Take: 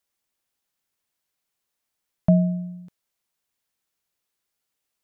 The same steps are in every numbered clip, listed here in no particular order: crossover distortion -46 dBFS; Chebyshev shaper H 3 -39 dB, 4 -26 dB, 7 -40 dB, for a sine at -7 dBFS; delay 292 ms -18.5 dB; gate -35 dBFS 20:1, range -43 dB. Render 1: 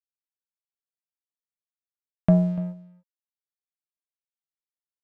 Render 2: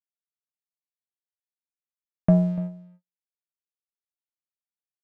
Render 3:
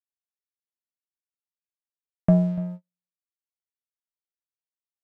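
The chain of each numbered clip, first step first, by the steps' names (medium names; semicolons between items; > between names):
gate > crossover distortion > Chebyshev shaper > delay; crossover distortion > Chebyshev shaper > gate > delay; Chebyshev shaper > crossover distortion > delay > gate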